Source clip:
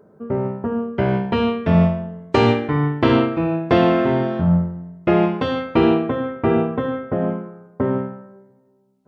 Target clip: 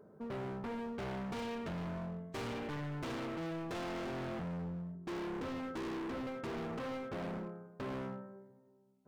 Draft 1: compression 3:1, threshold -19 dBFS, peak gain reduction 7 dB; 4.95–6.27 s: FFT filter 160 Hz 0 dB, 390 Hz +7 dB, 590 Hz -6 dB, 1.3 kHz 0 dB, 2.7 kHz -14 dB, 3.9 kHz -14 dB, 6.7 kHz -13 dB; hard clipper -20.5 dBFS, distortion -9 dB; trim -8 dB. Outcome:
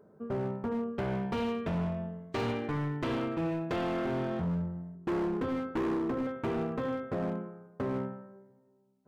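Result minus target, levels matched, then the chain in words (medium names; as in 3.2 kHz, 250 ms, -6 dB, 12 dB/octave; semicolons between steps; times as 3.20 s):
hard clipper: distortion -6 dB
compression 3:1, threshold -19 dBFS, peak gain reduction 7 dB; 4.95–6.27 s: FFT filter 160 Hz 0 dB, 390 Hz +7 dB, 590 Hz -6 dB, 1.3 kHz 0 dB, 2.7 kHz -14 dB, 3.9 kHz -14 dB, 6.7 kHz -13 dB; hard clipper -31 dBFS, distortion -3 dB; trim -8 dB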